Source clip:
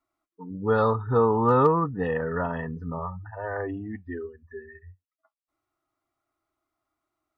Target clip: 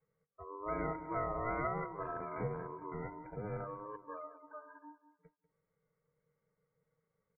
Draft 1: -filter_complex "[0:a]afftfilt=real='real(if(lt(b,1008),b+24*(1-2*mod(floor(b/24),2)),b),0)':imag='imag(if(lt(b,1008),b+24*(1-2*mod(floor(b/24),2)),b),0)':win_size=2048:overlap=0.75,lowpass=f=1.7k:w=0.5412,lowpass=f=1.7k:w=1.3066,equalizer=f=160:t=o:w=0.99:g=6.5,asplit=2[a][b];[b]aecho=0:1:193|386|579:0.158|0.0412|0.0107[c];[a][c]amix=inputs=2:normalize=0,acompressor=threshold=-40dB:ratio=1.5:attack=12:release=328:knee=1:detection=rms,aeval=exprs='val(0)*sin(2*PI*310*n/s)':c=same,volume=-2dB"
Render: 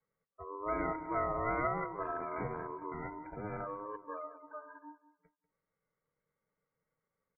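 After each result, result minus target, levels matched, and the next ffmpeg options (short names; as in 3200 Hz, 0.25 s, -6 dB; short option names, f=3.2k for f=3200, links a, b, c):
125 Hz band -4.5 dB; compressor: peak gain reduction -3.5 dB
-filter_complex "[0:a]afftfilt=real='real(if(lt(b,1008),b+24*(1-2*mod(floor(b/24),2)),b),0)':imag='imag(if(lt(b,1008),b+24*(1-2*mod(floor(b/24),2)),b),0)':win_size=2048:overlap=0.75,lowpass=f=1.7k:w=0.5412,lowpass=f=1.7k:w=1.3066,equalizer=f=160:t=o:w=0.99:g=17,asplit=2[a][b];[b]aecho=0:1:193|386|579:0.158|0.0412|0.0107[c];[a][c]amix=inputs=2:normalize=0,acompressor=threshold=-40dB:ratio=1.5:attack=12:release=328:knee=1:detection=rms,aeval=exprs='val(0)*sin(2*PI*310*n/s)':c=same,volume=-2dB"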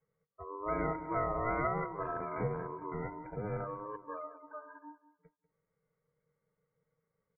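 compressor: peak gain reduction -3.5 dB
-filter_complex "[0:a]afftfilt=real='real(if(lt(b,1008),b+24*(1-2*mod(floor(b/24),2)),b),0)':imag='imag(if(lt(b,1008),b+24*(1-2*mod(floor(b/24),2)),b),0)':win_size=2048:overlap=0.75,lowpass=f=1.7k:w=0.5412,lowpass=f=1.7k:w=1.3066,equalizer=f=160:t=o:w=0.99:g=17,asplit=2[a][b];[b]aecho=0:1:193|386|579:0.158|0.0412|0.0107[c];[a][c]amix=inputs=2:normalize=0,acompressor=threshold=-50.5dB:ratio=1.5:attack=12:release=328:knee=1:detection=rms,aeval=exprs='val(0)*sin(2*PI*310*n/s)':c=same,volume=-2dB"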